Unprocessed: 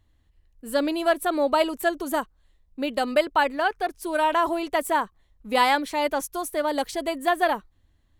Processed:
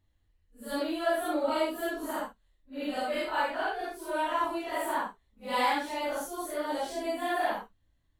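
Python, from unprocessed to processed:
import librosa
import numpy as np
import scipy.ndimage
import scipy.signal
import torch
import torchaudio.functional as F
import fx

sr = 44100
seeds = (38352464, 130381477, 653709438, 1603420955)

y = fx.phase_scramble(x, sr, seeds[0], window_ms=200)
y = F.gain(torch.from_numpy(y), -7.0).numpy()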